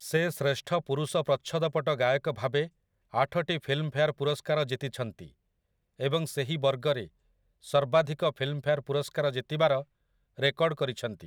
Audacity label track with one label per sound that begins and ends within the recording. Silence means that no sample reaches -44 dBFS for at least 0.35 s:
3.130000	5.280000	sound
6.000000	7.070000	sound
7.640000	9.830000	sound